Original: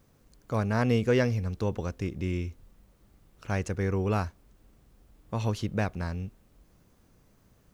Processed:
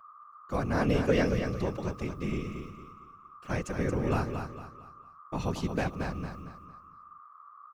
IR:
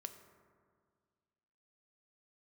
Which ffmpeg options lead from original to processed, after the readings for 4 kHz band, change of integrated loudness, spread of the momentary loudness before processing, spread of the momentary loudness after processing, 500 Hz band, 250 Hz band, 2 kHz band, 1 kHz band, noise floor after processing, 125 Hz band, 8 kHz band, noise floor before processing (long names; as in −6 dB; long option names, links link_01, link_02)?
−0.5 dB, −2.0 dB, 12 LU, 24 LU, −1.0 dB, −0.5 dB, −0.5 dB, +0.5 dB, −54 dBFS, −3.5 dB, −1.0 dB, −63 dBFS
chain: -af "agate=range=-31dB:threshold=-52dB:ratio=16:detection=peak,highpass=92,aeval=exprs='val(0)+0.00398*sin(2*PI*1200*n/s)':channel_layout=same,afftfilt=real='hypot(re,im)*cos(2*PI*random(0))':imag='hypot(re,im)*sin(2*PI*random(1))':win_size=512:overlap=0.75,aecho=1:1:227|454|681|908:0.447|0.152|0.0516|0.0176,volume=4.5dB"